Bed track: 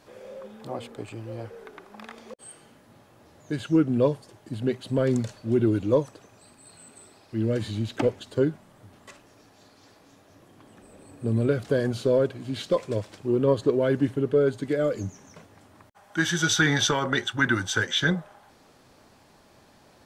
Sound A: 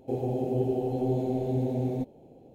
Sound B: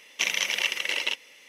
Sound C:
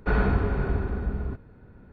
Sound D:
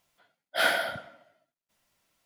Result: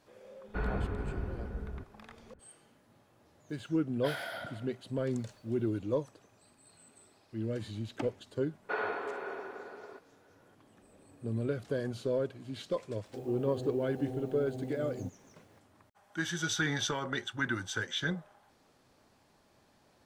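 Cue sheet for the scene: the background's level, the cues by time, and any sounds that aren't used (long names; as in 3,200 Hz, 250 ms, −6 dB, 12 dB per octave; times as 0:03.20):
bed track −10 dB
0:00.48: mix in C −11 dB
0:03.49: mix in D −1.5 dB + downward compressor, threshold −35 dBFS
0:08.63: mix in C −4.5 dB + high-pass filter 410 Hz 24 dB per octave
0:13.05: mix in A −12.5 dB + bit reduction 9 bits
not used: B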